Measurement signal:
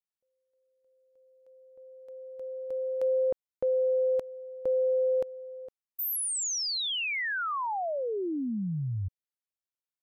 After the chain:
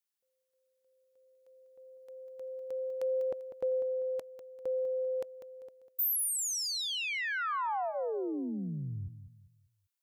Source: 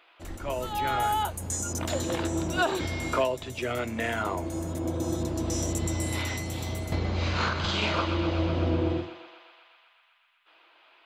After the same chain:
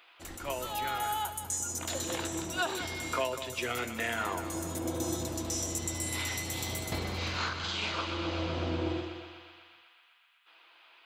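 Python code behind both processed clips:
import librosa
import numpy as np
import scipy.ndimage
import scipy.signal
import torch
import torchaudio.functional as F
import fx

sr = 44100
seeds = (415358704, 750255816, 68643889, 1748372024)

p1 = fx.tilt_eq(x, sr, slope=2.0)
p2 = fx.notch(p1, sr, hz=610.0, q=13.0)
p3 = fx.rider(p2, sr, range_db=4, speed_s=0.5)
p4 = p3 + fx.echo_feedback(p3, sr, ms=197, feedback_pct=35, wet_db=-11.0, dry=0)
y = p4 * librosa.db_to_amplitude(-4.5)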